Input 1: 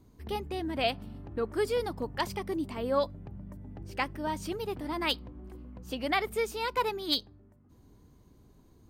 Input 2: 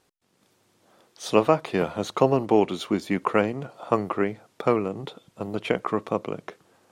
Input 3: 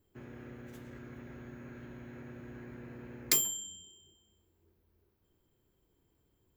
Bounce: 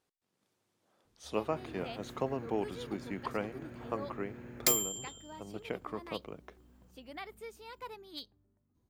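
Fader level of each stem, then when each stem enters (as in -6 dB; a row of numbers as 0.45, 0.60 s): -16.0, -14.5, -0.5 dB; 1.05, 0.00, 1.35 s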